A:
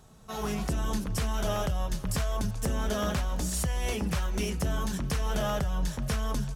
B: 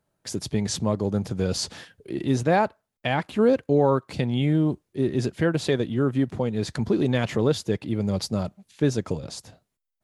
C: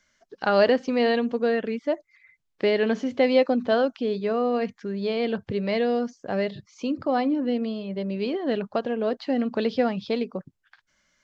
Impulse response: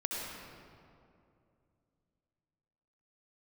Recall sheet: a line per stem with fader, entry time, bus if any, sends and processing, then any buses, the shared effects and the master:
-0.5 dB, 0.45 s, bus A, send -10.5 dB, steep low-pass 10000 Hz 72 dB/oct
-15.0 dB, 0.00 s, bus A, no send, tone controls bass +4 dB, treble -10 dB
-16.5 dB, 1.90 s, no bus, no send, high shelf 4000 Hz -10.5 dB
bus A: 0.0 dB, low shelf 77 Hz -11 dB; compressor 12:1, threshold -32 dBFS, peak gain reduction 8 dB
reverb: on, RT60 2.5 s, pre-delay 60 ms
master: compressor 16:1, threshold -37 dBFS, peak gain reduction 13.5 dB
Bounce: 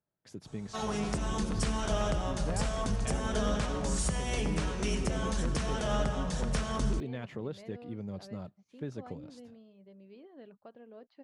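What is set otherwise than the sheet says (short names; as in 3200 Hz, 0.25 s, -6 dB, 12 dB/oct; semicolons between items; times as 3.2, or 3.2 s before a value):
stem C -16.5 dB -> -25.5 dB; master: missing compressor 16:1, threshold -37 dBFS, peak gain reduction 13.5 dB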